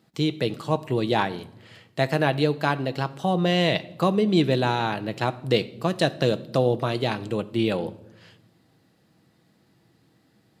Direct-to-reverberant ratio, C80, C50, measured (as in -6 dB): 11.0 dB, 21.0 dB, 18.0 dB